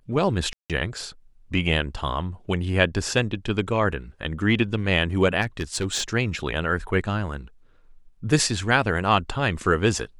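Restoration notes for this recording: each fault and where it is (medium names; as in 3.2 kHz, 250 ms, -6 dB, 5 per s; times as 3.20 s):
0.53–0.70 s: dropout 167 ms
5.42–6.03 s: clipped -20 dBFS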